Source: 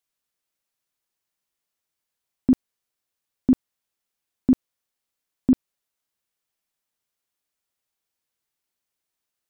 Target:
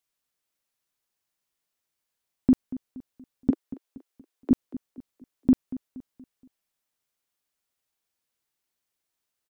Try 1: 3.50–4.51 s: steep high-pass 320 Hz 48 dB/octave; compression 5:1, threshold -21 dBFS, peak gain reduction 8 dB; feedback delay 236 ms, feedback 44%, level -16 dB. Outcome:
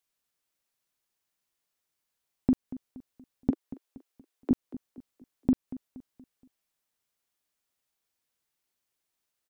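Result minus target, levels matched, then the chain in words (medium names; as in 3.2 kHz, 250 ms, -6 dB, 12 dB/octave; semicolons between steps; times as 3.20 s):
compression: peak gain reduction +6 dB
3.50–4.51 s: steep high-pass 320 Hz 48 dB/octave; compression 5:1, threshold -13.5 dBFS, peak gain reduction 2 dB; feedback delay 236 ms, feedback 44%, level -16 dB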